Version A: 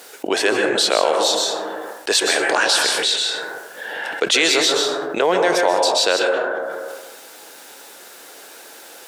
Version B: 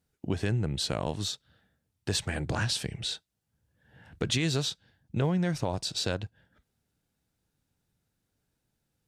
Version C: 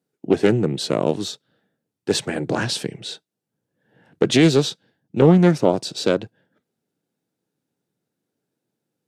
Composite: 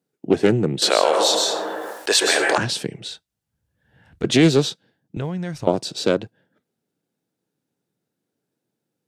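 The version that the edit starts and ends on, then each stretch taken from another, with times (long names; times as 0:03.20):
C
0:00.82–0:02.58: punch in from A
0:03.08–0:04.24: punch in from B
0:05.17–0:05.67: punch in from B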